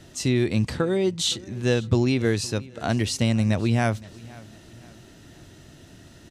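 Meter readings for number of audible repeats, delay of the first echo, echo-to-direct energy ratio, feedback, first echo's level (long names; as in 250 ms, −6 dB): 2, 515 ms, −21.0 dB, 42%, −22.0 dB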